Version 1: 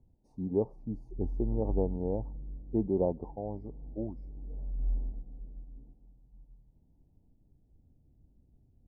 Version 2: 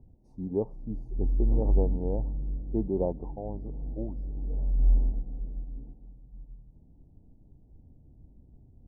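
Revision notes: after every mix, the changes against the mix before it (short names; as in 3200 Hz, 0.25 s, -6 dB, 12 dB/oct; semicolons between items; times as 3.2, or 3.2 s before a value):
background +9.5 dB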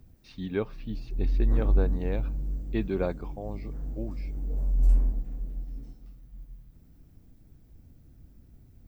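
speech: add air absorption 380 m; master: remove elliptic low-pass 890 Hz, stop band 40 dB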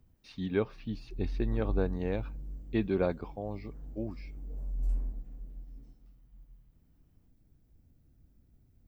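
background -10.0 dB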